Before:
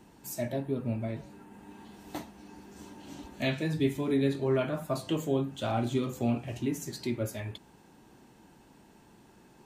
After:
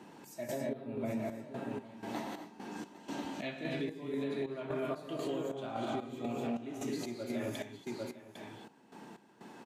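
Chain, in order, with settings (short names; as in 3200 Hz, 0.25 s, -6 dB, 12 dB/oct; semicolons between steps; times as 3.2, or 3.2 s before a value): HPF 180 Hz 12 dB/oct; on a send: echo 0.801 s -12.5 dB; on the sum: non-linear reverb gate 0.29 s rising, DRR 0.5 dB; vocal rider within 3 dB 0.5 s; step gate "xxx...xxx...x" 185 bpm -12 dB; compressor 2.5:1, threshold -33 dBFS, peak gain reduction 6.5 dB; limiter -29 dBFS, peak gain reduction 7 dB; LPF 3400 Hz 6 dB/oct; low shelf 260 Hz -4 dB; gain +3 dB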